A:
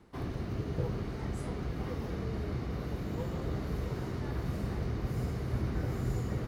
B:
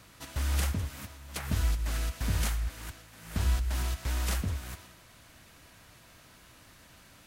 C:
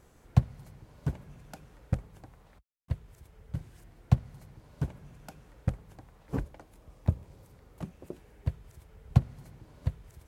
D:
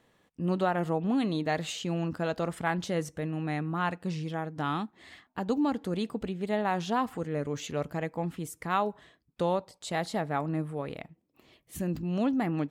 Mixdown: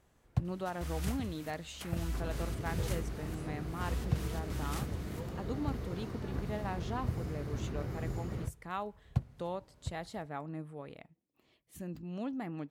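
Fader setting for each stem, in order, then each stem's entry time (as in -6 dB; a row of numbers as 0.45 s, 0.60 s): -5.0 dB, -9.5 dB, -9.5 dB, -10.5 dB; 2.00 s, 0.45 s, 0.00 s, 0.00 s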